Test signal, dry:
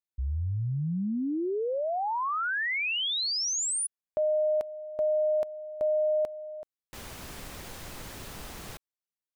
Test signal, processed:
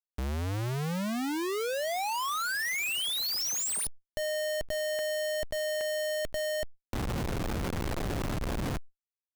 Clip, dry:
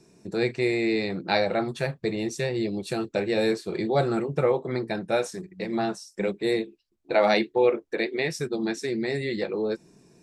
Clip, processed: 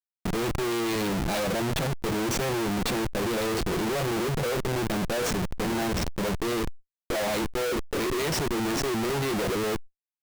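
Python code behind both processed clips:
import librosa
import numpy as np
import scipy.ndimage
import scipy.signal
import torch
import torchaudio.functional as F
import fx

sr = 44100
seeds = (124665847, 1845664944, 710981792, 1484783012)

y = fx.dynamic_eq(x, sr, hz=1200.0, q=0.96, threshold_db=-40.0, ratio=4.0, max_db=-6)
y = fx.schmitt(y, sr, flips_db=-38.0)
y = fx.env_flatten(y, sr, amount_pct=70)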